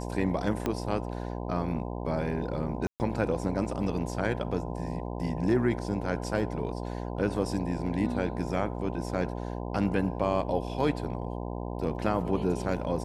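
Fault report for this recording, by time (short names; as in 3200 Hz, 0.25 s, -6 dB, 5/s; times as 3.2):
buzz 60 Hz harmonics 17 -35 dBFS
0.66 pop -15 dBFS
2.87–3 gap 0.129 s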